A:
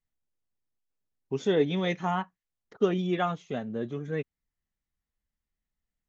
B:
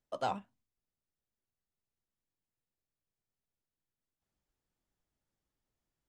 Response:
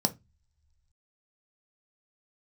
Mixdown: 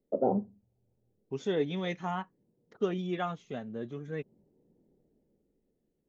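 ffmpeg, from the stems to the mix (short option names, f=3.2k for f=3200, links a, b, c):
-filter_complex "[0:a]volume=-5.5dB,asplit=2[a][b];[1:a]lowshelf=f=250:g=4.5,dynaudnorm=f=210:g=13:m=15dB,lowpass=f=440:t=q:w=4.9,volume=-2.5dB,asplit=2[c][d];[d]volume=-6.5dB[e];[b]apad=whole_len=268248[f];[c][f]sidechaincompress=threshold=-55dB:ratio=8:attack=16:release=523[g];[2:a]atrim=start_sample=2205[h];[e][h]afir=irnorm=-1:irlink=0[i];[a][g][i]amix=inputs=3:normalize=0"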